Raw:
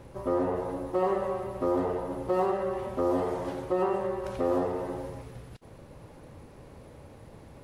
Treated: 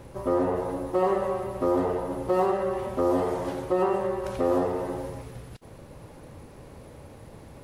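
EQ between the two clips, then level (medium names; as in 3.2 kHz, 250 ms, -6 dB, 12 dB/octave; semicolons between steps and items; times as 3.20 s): treble shelf 7 kHz +4.5 dB; +3.0 dB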